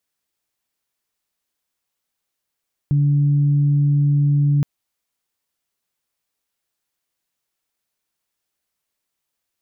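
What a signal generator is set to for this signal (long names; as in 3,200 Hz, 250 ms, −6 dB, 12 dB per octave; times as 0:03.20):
steady harmonic partials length 1.72 s, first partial 144 Hz, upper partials −17 dB, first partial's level −13 dB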